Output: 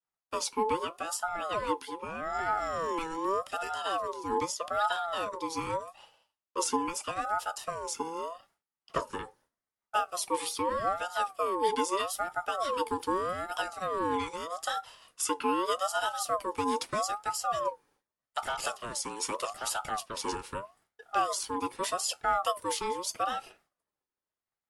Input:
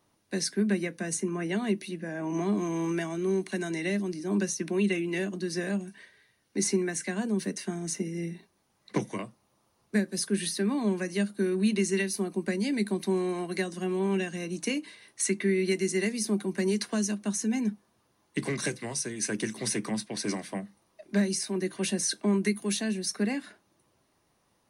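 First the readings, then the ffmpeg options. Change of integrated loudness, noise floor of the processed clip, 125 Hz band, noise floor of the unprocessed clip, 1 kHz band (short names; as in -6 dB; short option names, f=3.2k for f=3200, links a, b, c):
-2.5 dB, under -85 dBFS, -16.5 dB, -71 dBFS, +13.5 dB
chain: -af "agate=range=-33dB:threshold=-56dB:ratio=3:detection=peak,aeval=exprs='val(0)*sin(2*PI*860*n/s+860*0.25/0.81*sin(2*PI*0.81*n/s))':c=same"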